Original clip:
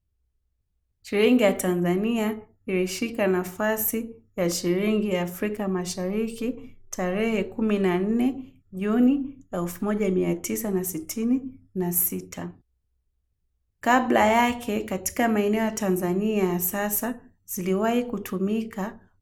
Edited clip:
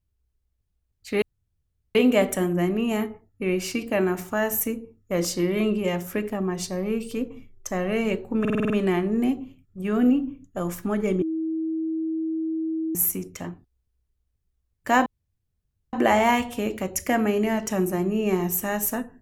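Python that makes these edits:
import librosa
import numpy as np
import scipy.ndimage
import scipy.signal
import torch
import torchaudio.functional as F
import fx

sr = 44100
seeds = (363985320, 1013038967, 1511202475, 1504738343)

y = fx.edit(x, sr, fx.insert_room_tone(at_s=1.22, length_s=0.73),
    fx.stutter(start_s=7.67, slice_s=0.05, count=7),
    fx.bleep(start_s=10.19, length_s=1.73, hz=321.0, db=-24.0),
    fx.insert_room_tone(at_s=14.03, length_s=0.87), tone=tone)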